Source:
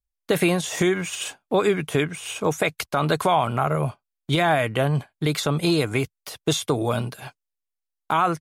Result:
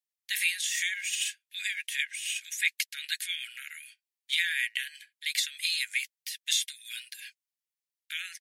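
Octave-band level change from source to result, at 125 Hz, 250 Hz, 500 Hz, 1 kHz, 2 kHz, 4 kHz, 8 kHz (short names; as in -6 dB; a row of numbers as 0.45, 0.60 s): under -40 dB, under -40 dB, under -40 dB, under -40 dB, -1.5 dB, 0.0 dB, 0.0 dB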